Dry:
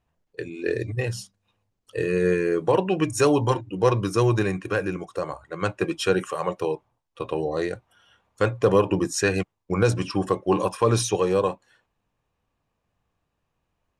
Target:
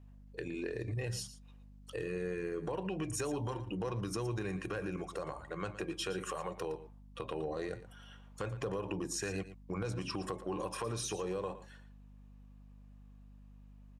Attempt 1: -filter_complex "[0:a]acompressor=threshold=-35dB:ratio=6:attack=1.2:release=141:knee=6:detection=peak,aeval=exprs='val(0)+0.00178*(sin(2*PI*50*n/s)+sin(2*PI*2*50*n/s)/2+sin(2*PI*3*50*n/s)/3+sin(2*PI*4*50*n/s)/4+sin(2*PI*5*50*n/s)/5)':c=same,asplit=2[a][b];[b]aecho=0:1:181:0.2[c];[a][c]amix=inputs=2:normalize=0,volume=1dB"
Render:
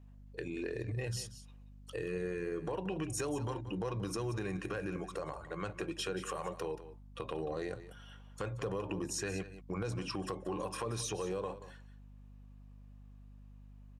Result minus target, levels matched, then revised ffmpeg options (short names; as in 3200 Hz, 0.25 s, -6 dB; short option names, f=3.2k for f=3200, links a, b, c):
echo 66 ms late
-filter_complex "[0:a]acompressor=threshold=-35dB:ratio=6:attack=1.2:release=141:knee=6:detection=peak,aeval=exprs='val(0)+0.00178*(sin(2*PI*50*n/s)+sin(2*PI*2*50*n/s)/2+sin(2*PI*3*50*n/s)/3+sin(2*PI*4*50*n/s)/4+sin(2*PI*5*50*n/s)/5)':c=same,asplit=2[a][b];[b]aecho=0:1:115:0.2[c];[a][c]amix=inputs=2:normalize=0,volume=1dB"